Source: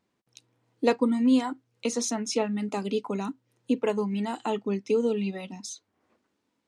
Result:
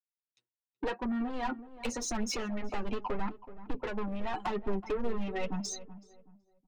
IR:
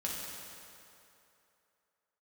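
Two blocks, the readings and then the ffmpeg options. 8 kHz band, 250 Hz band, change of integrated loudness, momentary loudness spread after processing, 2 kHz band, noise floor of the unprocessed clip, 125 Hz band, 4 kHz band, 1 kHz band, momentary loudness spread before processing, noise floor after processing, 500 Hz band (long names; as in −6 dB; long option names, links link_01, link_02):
−5.0 dB, −9.5 dB, −8.5 dB, 7 LU, −2.0 dB, −78 dBFS, can't be measured, −5.0 dB, −3.0 dB, 14 LU, below −85 dBFS, −9.0 dB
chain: -filter_complex "[0:a]agate=range=-33dB:threshold=-47dB:ratio=3:detection=peak,afftdn=noise_reduction=20:noise_floor=-42,aecho=1:1:5.4:0.36,acrossover=split=140|960[link_01][link_02][link_03];[link_02]dynaudnorm=framelen=160:gausssize=3:maxgain=10dB[link_04];[link_01][link_04][link_03]amix=inputs=3:normalize=0,equalizer=frequency=1700:width=0.84:gain=14,acompressor=threshold=-25dB:ratio=6,asoftclip=type=tanh:threshold=-29dB,asubboost=boost=9:cutoff=74,volume=26.5dB,asoftclip=hard,volume=-26.5dB,flanger=delay=4.9:depth=3.8:regen=11:speed=0.86:shape=sinusoidal,asplit=2[link_05][link_06];[link_06]adelay=376,lowpass=frequency=1200:poles=1,volume=-14dB,asplit=2[link_07][link_08];[link_08]adelay=376,lowpass=frequency=1200:poles=1,volume=0.32,asplit=2[link_09][link_10];[link_10]adelay=376,lowpass=frequency=1200:poles=1,volume=0.32[link_11];[link_05][link_07][link_09][link_11]amix=inputs=4:normalize=0,volume=3.5dB"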